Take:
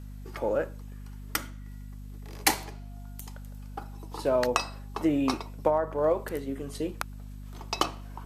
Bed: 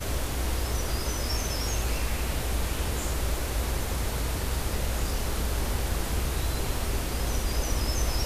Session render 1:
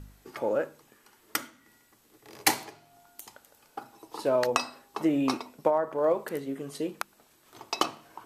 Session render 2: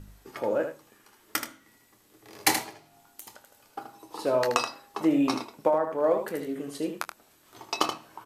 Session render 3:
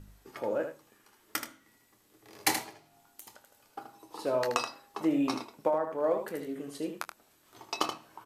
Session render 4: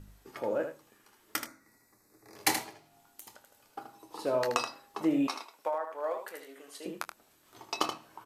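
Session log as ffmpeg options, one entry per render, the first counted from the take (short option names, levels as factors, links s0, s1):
-af "bandreject=f=50:t=h:w=4,bandreject=f=100:t=h:w=4,bandreject=f=150:t=h:w=4,bandreject=f=200:t=h:w=4,bandreject=f=250:t=h:w=4"
-filter_complex "[0:a]asplit=2[s0][s1];[s1]adelay=25,volume=0.251[s2];[s0][s2]amix=inputs=2:normalize=0,aecho=1:1:10|78:0.299|0.422"
-af "volume=0.596"
-filter_complex "[0:a]asettb=1/sr,asplit=3[s0][s1][s2];[s0]atrim=end=1.464[s3];[s1]atrim=start=1.46:end=2.36,asetpts=PTS-STARTPTS,afade=t=in:d=0.004:c=qsin,afade=t=out:st=0.896:d=0.004:c=qsin,asuperstop=centerf=3100:order=4:qfactor=1.8[s4];[s2]atrim=start=2.356[s5];[s3][s4]acrossfade=d=0.004:c1=hsin:c2=qsin[s6];[s6][s5]acrossfade=d=0.004:c1=qsin:c2=hsin,asettb=1/sr,asplit=3[s7][s8][s9];[s7]atrim=end=5.274[s10];[s8]atrim=start=5.27:end=6.86,asetpts=PTS-STARTPTS,afade=t=in:d=0.004:c=qsin,afade=t=out:st=1.586:d=0.004:c=qsin,highpass=750[s11];[s9]atrim=start=6.856[s12];[s10][s11]acrossfade=d=0.004:c1=hsin:c2=qsin[s13];[s13][s12]acrossfade=d=0.004:c1=qsin:c2=hsin"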